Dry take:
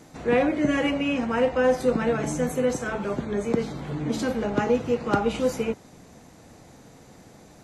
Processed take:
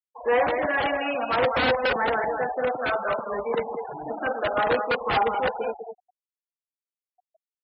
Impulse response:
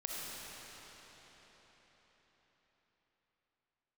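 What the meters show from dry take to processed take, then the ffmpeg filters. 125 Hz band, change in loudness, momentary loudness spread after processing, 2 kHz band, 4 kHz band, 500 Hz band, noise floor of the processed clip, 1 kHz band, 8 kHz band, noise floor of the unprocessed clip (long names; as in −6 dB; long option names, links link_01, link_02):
−9.5 dB, 0.0 dB, 9 LU, +5.0 dB, +4.0 dB, −0.5 dB, below −85 dBFS, +6.5 dB, below −40 dB, −51 dBFS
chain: -filter_complex "[0:a]afftfilt=real='re*pow(10,6/40*sin(2*PI*(0.93*log(max(b,1)*sr/1024/100)/log(2)-(-0.63)*(pts-256)/sr)))':imag='im*pow(10,6/40*sin(2*PI*(0.93*log(max(b,1)*sr/1024/100)/log(2)-(-0.63)*(pts-256)/sr)))':win_size=1024:overlap=0.75,aeval=exprs='val(0)+0.02*(sin(2*PI*50*n/s)+sin(2*PI*2*50*n/s)/2+sin(2*PI*3*50*n/s)/3+sin(2*PI*4*50*n/s)/4+sin(2*PI*5*50*n/s)/5)':channel_layout=same,acrossover=split=570 2300:gain=0.0794 1 0.0631[link_01][link_02][link_03];[link_01][link_02][link_03]amix=inputs=3:normalize=0,asoftclip=type=hard:threshold=-25.5dB,asplit=2[link_04][link_05];[link_05]aecho=0:1:204:0.447[link_06];[link_04][link_06]amix=inputs=2:normalize=0,aeval=exprs='(mod(16.8*val(0)+1,2)-1)/16.8':channel_layout=same,acrossover=split=5000[link_07][link_08];[link_08]acompressor=threshold=-48dB:ratio=4:attack=1:release=60[link_09];[link_07][link_09]amix=inputs=2:normalize=0,equalizer=frequency=720:width_type=o:width=1.1:gain=3.5,afftfilt=real='re*gte(hypot(re,im),0.0224)':imag='im*gte(hypot(re,im),0.0224)':win_size=1024:overlap=0.75,highpass=47,acontrast=63"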